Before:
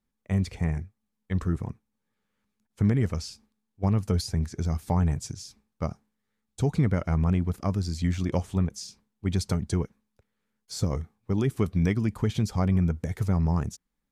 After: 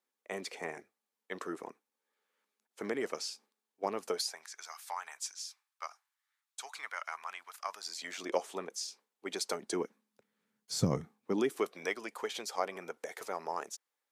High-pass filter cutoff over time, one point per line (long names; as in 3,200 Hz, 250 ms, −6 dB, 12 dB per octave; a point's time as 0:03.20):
high-pass filter 24 dB per octave
0:04.08 370 Hz
0:04.49 990 Hz
0:07.57 990 Hz
0:08.27 400 Hz
0:09.51 400 Hz
0:10.76 110 Hz
0:11.75 470 Hz